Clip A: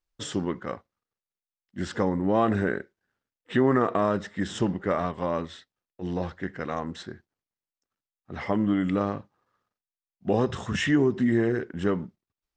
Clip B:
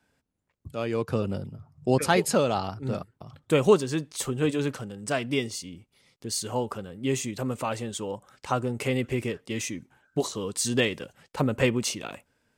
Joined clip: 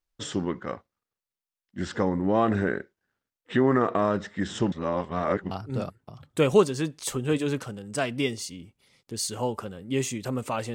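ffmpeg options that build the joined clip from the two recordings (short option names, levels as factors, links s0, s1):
-filter_complex "[0:a]apad=whole_dur=10.74,atrim=end=10.74,asplit=2[s0][s1];[s0]atrim=end=4.722[s2];[s1]atrim=start=4.718:end=5.512,asetpts=PTS-STARTPTS,areverse[s3];[1:a]atrim=start=2.638:end=7.87[s4];[s2][s3]acrossfade=d=0.004:c1=hsin:c2=hsin[s5];[s5][s4]acrossfade=d=0.004:c1=hsin:c2=hsin"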